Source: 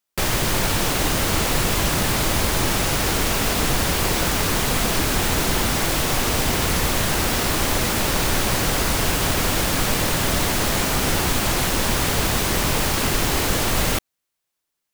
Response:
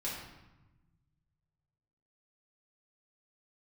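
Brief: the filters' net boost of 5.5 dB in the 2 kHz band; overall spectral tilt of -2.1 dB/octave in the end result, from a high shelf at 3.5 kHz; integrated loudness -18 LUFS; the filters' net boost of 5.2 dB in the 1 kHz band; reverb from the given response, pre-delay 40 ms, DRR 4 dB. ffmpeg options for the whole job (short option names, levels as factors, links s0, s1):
-filter_complex "[0:a]equalizer=f=1000:t=o:g=5,equalizer=f=2000:t=o:g=3,highshelf=f=3500:g=8,asplit=2[s0][s1];[1:a]atrim=start_sample=2205,adelay=40[s2];[s1][s2]afir=irnorm=-1:irlink=0,volume=0.473[s3];[s0][s3]amix=inputs=2:normalize=0,volume=0.596"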